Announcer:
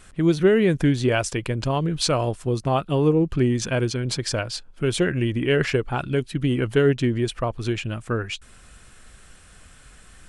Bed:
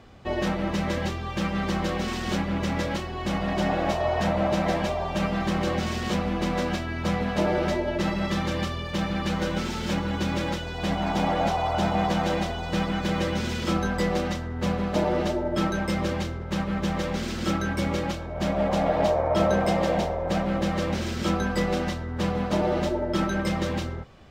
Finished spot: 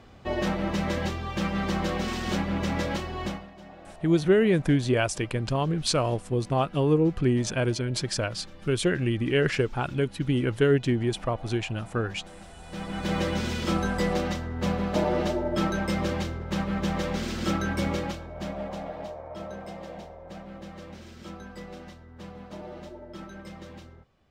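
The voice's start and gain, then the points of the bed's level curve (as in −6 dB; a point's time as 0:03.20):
3.85 s, −3.0 dB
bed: 0:03.25 −1 dB
0:03.51 −22 dB
0:12.38 −22 dB
0:13.12 −1 dB
0:17.88 −1 dB
0:19.16 −16.5 dB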